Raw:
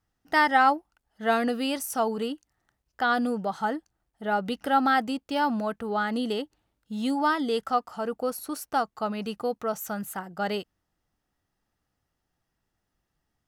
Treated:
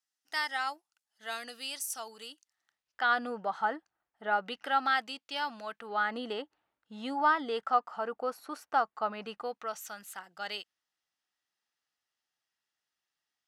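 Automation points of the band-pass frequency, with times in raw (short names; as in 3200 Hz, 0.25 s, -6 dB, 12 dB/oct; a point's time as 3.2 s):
band-pass, Q 0.74
2.32 s 6700 Hz
3.32 s 1400 Hz
4.26 s 1400 Hz
5.08 s 3500 Hz
5.62 s 3500 Hz
6.17 s 1300 Hz
9.26 s 1300 Hz
9.9 s 3900 Hz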